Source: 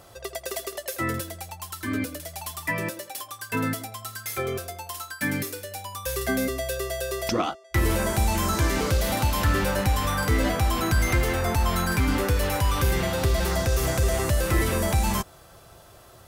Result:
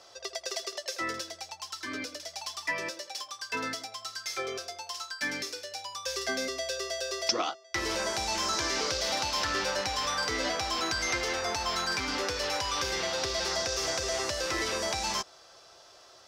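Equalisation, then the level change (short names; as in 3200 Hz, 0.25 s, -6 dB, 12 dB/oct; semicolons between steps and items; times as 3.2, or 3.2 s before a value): three-band isolator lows -18 dB, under 330 Hz, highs -18 dB, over 6500 Hz; bell 5400 Hz +14 dB 0.95 oct; -4.5 dB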